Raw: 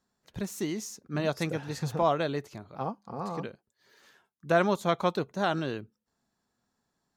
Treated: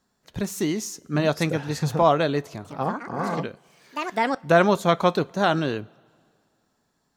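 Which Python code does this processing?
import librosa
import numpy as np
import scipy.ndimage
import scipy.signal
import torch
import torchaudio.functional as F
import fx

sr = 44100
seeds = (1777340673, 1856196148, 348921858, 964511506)

y = fx.echo_pitch(x, sr, ms=177, semitones=5, count=2, db_per_echo=-6.0, at=(2.47, 4.74))
y = fx.rev_double_slope(y, sr, seeds[0], early_s=0.21, late_s=2.2, knee_db=-20, drr_db=17.0)
y = y * 10.0 ** (7.0 / 20.0)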